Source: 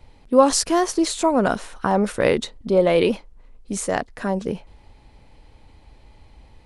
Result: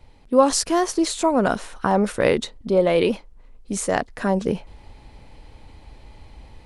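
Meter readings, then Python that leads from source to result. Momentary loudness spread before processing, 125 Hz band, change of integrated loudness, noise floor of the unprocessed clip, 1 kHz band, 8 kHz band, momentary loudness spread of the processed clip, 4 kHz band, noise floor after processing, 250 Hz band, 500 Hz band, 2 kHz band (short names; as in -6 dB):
11 LU, +0.5 dB, -0.5 dB, -52 dBFS, -0.5 dB, -1.0 dB, 9 LU, -1.0 dB, -49 dBFS, -0.5 dB, -0.5 dB, 0.0 dB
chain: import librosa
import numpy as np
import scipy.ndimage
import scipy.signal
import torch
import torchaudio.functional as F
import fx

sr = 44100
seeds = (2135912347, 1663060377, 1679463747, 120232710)

y = fx.rider(x, sr, range_db=10, speed_s=2.0)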